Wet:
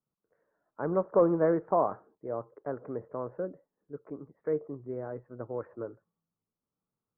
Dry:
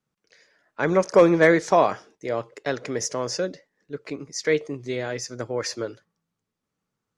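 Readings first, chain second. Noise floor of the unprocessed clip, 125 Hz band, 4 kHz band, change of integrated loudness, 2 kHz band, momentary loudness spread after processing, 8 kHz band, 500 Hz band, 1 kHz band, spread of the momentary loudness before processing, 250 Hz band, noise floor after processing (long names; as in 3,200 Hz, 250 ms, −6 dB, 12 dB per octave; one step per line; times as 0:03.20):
−84 dBFS, −8.0 dB, below −40 dB, −8.5 dB, −22.0 dB, 18 LU, below −40 dB, −8.0 dB, −8.5 dB, 17 LU, −8.0 dB, below −85 dBFS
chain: Butterworth low-pass 1,300 Hz 36 dB per octave
level −8 dB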